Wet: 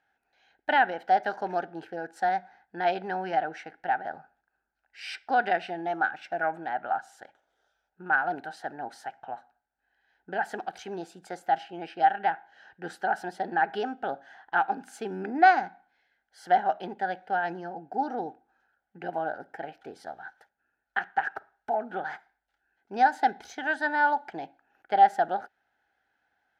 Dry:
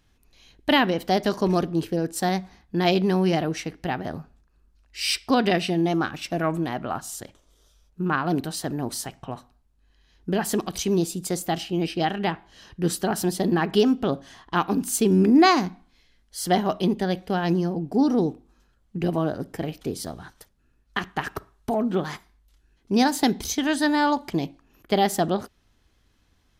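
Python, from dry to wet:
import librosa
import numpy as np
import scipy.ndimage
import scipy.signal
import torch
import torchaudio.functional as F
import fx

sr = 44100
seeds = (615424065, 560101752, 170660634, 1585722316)

y = fx.double_bandpass(x, sr, hz=1100.0, octaves=0.91)
y = y * 10.0 ** (6.0 / 20.0)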